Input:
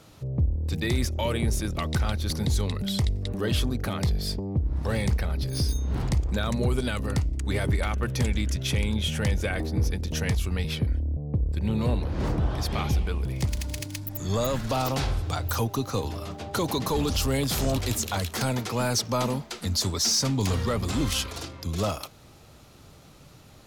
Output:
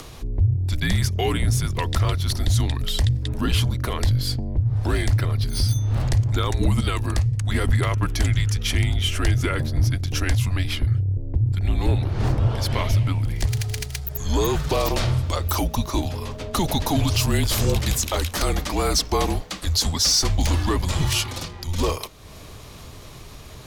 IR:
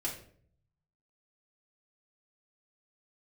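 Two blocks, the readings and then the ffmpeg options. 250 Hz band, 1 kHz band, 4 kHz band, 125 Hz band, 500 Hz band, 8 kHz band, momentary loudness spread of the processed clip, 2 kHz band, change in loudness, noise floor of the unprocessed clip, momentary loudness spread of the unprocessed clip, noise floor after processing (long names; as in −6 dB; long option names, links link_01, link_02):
+1.5 dB, +4.0 dB, +5.0 dB, +6.0 dB, +2.0 dB, +4.5 dB, 7 LU, +4.0 dB, +4.5 dB, −51 dBFS, 4 LU, −40 dBFS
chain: -af "afreqshift=-170,acompressor=mode=upward:threshold=-37dB:ratio=2.5,volume=5dB"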